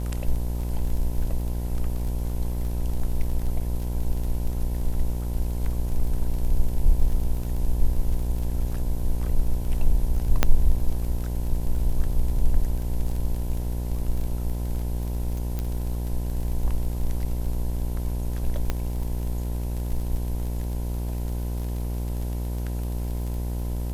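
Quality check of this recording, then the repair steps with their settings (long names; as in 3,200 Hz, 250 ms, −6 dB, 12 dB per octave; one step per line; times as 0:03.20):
mains buzz 60 Hz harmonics 17 −28 dBFS
surface crackle 28 per second −31 dBFS
0:10.43: click −3 dBFS
0:15.59: click −16 dBFS
0:18.70: click −12 dBFS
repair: click removal
hum removal 60 Hz, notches 17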